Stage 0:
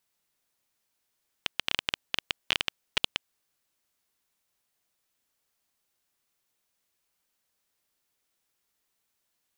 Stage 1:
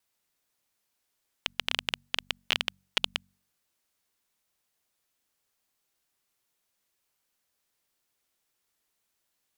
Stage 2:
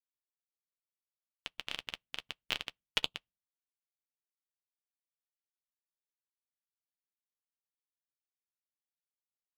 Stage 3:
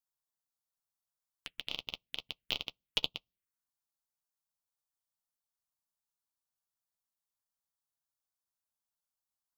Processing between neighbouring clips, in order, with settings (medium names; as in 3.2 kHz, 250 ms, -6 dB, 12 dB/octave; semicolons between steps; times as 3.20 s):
de-hum 47.42 Hz, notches 5; wow and flutter 21 cents
simulated room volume 120 m³, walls furnished, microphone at 0.53 m; upward expansion 2.5:1, over -46 dBFS; trim -3.5 dB
in parallel at -4 dB: hard clipper -26.5 dBFS, distortion -4 dB; on the sum: touch-sensitive phaser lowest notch 390 Hz, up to 1.7 kHz, full sweep at -41.5 dBFS